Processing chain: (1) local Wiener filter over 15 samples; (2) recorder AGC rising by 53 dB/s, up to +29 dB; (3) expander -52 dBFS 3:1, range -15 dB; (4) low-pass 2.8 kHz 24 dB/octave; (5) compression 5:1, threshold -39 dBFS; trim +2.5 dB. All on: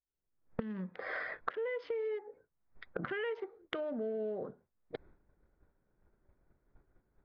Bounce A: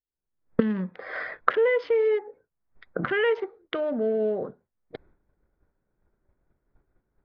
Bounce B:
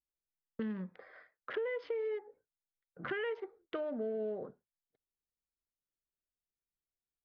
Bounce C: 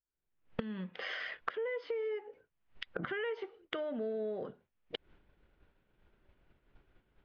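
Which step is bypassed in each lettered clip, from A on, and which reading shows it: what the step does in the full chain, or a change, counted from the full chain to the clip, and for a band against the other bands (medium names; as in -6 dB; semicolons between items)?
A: 5, mean gain reduction 11.0 dB; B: 2, crest factor change -8.0 dB; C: 1, 4 kHz band +7.5 dB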